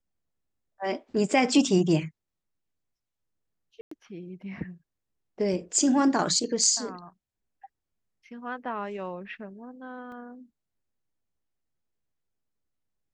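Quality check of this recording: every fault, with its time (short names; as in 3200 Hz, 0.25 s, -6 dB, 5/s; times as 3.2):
3.81–3.91 gap 0.104 s
10.12 gap 2.4 ms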